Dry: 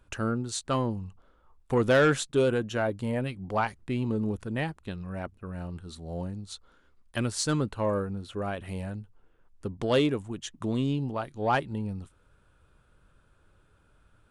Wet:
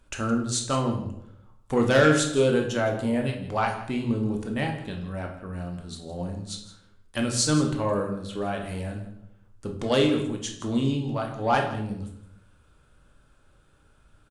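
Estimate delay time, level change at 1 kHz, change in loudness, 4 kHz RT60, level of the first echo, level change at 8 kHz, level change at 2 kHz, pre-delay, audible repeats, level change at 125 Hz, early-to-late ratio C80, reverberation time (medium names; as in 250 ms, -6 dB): 164 ms, +3.5 dB, +3.5 dB, 0.55 s, -16.0 dB, +7.0 dB, +3.0 dB, 3 ms, 1, +2.5 dB, 10.0 dB, 0.75 s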